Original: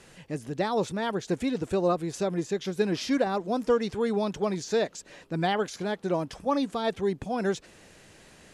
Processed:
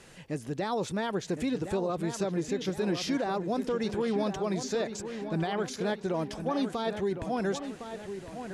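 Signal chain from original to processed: peak limiter -22.5 dBFS, peak gain reduction 9.5 dB; feedback echo behind a low-pass 1060 ms, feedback 47%, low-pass 3.2 kHz, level -9 dB

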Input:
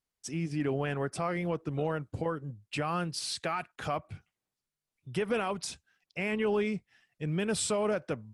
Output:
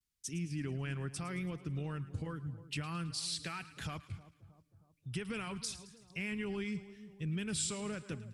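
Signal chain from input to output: amplifier tone stack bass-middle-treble 6-0-2; in parallel at +2 dB: compression, threshold -57 dBFS, peak gain reduction 12.5 dB; on the sum: vibrato 0.88 Hz 69 cents; two-band feedback delay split 960 Hz, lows 315 ms, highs 109 ms, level -15 dB; trim +9 dB

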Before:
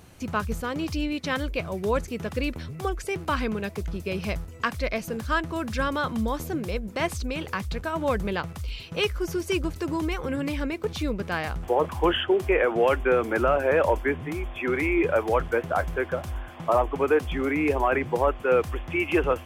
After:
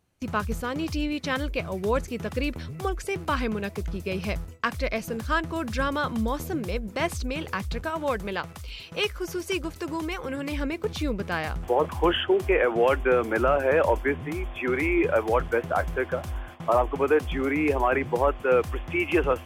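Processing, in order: gate with hold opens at -31 dBFS; 7.90–10.52 s: bass shelf 290 Hz -7.5 dB

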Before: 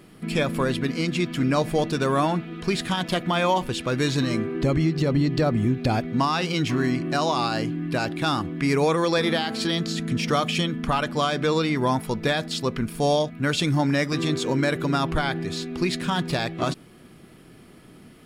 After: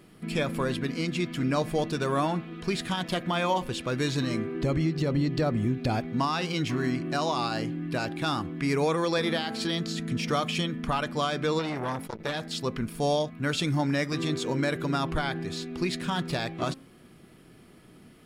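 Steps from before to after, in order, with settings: de-hum 266.7 Hz, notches 9; 11.59–12.54 s: transformer saturation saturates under 1 kHz; trim -4.5 dB

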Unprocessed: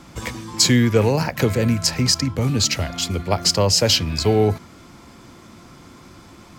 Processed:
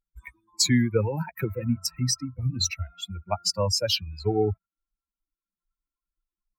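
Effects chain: expander on every frequency bin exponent 3; 1.54–2.71 s: rippled EQ curve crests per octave 2, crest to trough 13 dB; trim -2.5 dB

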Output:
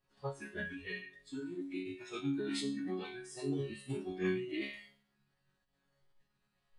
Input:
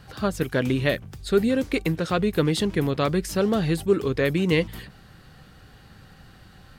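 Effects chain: chord resonator G#3 sus4, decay 0.78 s; formant-preserving pitch shift -7 st; spectral noise reduction 12 dB; trim +6.5 dB

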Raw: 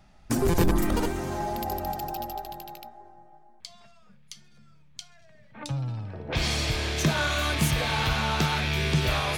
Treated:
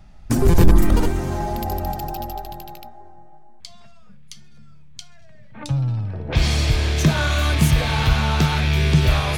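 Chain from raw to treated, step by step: bass shelf 150 Hz +11 dB; trim +3 dB

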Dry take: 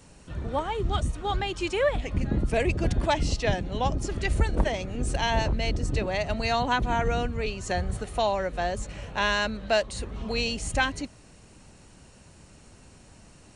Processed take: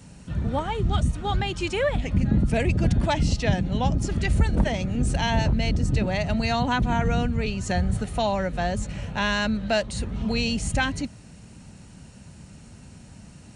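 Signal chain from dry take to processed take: high-pass 76 Hz 6 dB/octave; resonant low shelf 270 Hz +7 dB, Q 1.5; band-stop 1.1 kHz, Q 14; in parallel at -1.5 dB: peak limiter -18.5 dBFS, peak gain reduction 10.5 dB; on the sum: trim -3 dB

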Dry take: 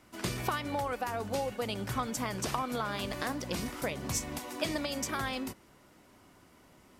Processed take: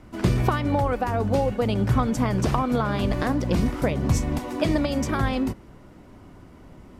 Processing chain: tilt EQ -3 dB/octave; trim +7.5 dB

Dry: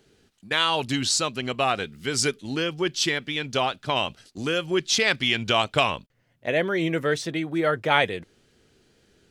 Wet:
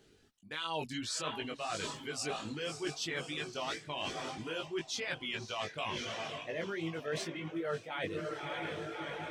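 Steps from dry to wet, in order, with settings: echo that smears into a reverb 622 ms, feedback 57%, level -8.5 dB; reverse; compression 16:1, threshold -30 dBFS, peak gain reduction 16.5 dB; reverse; reverb removal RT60 1 s; chorus 2.9 Hz, delay 18 ms, depth 2.4 ms

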